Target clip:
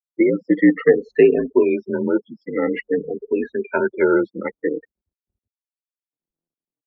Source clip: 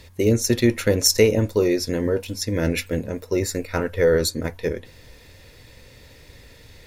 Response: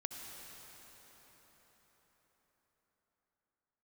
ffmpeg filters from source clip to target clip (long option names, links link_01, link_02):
-af "afftfilt=real='re*pow(10,18/40*sin(2*PI*(1.6*log(max(b,1)*sr/1024/100)/log(2)-(-0.5)*(pts-256)/sr)))':imag='im*pow(10,18/40*sin(2*PI*(1.6*log(max(b,1)*sr/1024/100)/log(2)-(-0.5)*(pts-256)/sr)))':win_size=1024:overlap=0.75,afftfilt=real='re*gte(hypot(re,im),0.0794)':imag='im*gte(hypot(re,im),0.0794)':win_size=1024:overlap=0.75,highpass=frequency=310:width_type=q:width=0.5412,highpass=frequency=310:width_type=q:width=1.307,lowpass=frequency=2300:width_type=q:width=0.5176,lowpass=frequency=2300:width_type=q:width=0.7071,lowpass=frequency=2300:width_type=q:width=1.932,afreqshift=-52,volume=2dB"